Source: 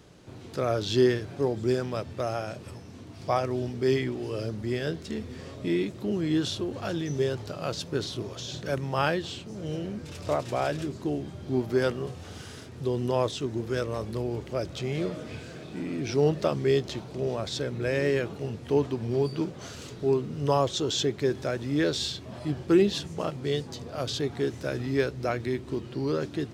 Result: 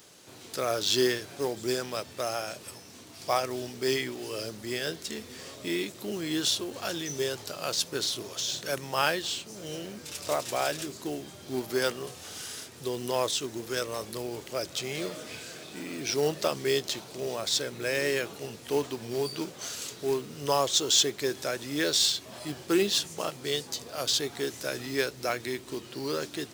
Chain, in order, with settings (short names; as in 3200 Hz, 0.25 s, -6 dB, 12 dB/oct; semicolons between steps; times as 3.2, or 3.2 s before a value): RIAA curve recording; short-mantissa float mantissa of 2-bit